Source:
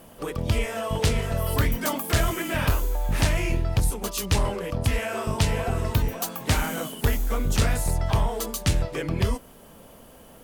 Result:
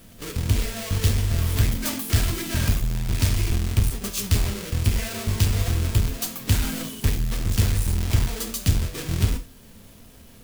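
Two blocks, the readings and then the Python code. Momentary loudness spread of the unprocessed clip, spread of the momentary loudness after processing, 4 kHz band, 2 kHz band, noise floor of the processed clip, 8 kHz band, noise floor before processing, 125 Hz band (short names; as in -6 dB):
4 LU, 5 LU, +1.5 dB, -3.0 dB, -48 dBFS, +2.0 dB, -49 dBFS, +3.5 dB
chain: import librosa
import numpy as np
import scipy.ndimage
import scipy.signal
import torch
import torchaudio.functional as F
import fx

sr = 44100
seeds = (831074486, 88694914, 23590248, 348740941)

y = fx.halfwave_hold(x, sr)
y = fx.peak_eq(y, sr, hz=740.0, db=-14.0, octaves=2.9)
y = fx.rev_gated(y, sr, seeds[0], gate_ms=130, shape='falling', drr_db=6.0)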